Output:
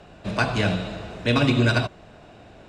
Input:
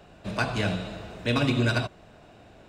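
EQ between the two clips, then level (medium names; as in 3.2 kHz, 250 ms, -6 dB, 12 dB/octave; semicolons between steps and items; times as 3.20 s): Bessel low-pass 8.5 kHz, order 2; +4.5 dB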